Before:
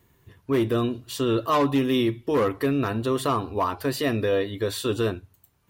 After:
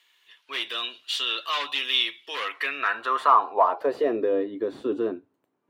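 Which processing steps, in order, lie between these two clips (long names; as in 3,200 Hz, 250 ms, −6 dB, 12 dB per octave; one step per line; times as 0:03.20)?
high-pass filter 84 Hz
RIAA equalisation recording
mid-hump overdrive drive 13 dB, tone 1,500 Hz, clips at −8.5 dBFS
band-pass filter sweep 3,200 Hz → 280 Hz, 0:02.39–0:04.38
level +7.5 dB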